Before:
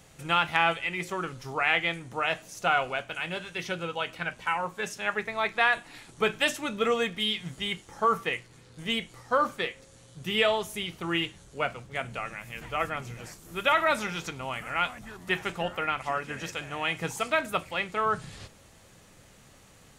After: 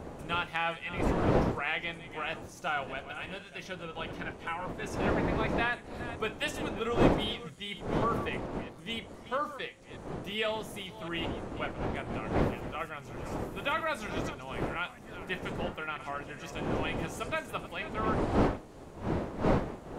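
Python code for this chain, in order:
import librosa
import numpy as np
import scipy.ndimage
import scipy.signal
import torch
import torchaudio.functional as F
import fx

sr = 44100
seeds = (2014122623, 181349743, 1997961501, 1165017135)

y = fx.reverse_delay(x, sr, ms=326, wet_db=-13.0)
y = fx.dmg_wind(y, sr, seeds[0], corner_hz=520.0, level_db=-27.0)
y = y * 10.0 ** (-8.0 / 20.0)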